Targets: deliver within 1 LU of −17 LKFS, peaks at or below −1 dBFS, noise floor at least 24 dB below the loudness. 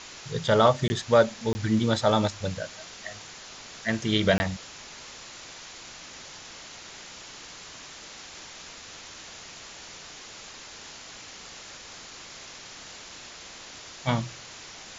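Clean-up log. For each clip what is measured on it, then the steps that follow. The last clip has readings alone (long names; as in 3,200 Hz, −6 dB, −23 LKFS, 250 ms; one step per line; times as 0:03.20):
number of dropouts 3; longest dropout 20 ms; background noise floor −45 dBFS; target noise floor −50 dBFS; integrated loudness −26.0 LKFS; sample peak −6.5 dBFS; target loudness −17.0 LKFS
→ repair the gap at 0:00.88/0:01.53/0:04.38, 20 ms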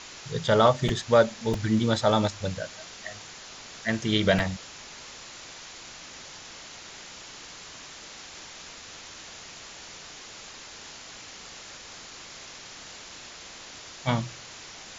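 number of dropouts 0; background noise floor −45 dBFS; target noise floor −50 dBFS
→ broadband denoise 6 dB, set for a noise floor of −45 dBFS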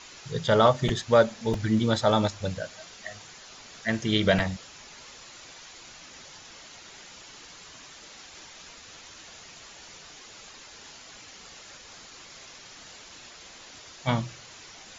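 background noise floor −48 dBFS; target noise floor −50 dBFS
→ broadband denoise 6 dB, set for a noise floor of −48 dBFS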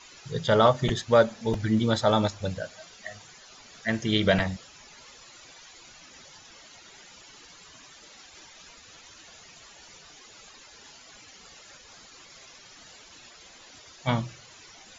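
background noise floor −51 dBFS; integrated loudness −25.5 LKFS; sample peak −6.5 dBFS; target loudness −17.0 LKFS
→ level +8.5 dB
brickwall limiter −1 dBFS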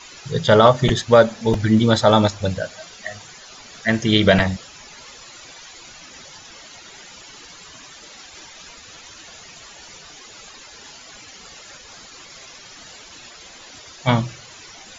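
integrated loudness −17.5 LKFS; sample peak −1.0 dBFS; background noise floor −43 dBFS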